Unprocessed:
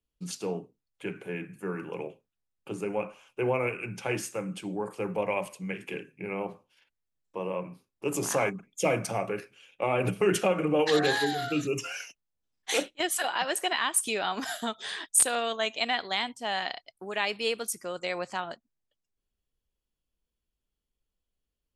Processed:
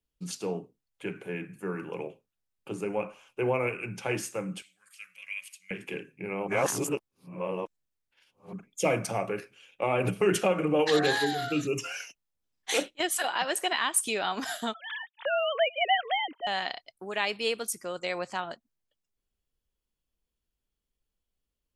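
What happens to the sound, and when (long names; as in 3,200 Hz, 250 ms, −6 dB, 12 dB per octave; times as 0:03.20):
0:04.62–0:05.71: inverse Chebyshev high-pass filter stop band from 960 Hz
0:06.48–0:08.53: reverse
0:14.74–0:16.47: three sine waves on the formant tracks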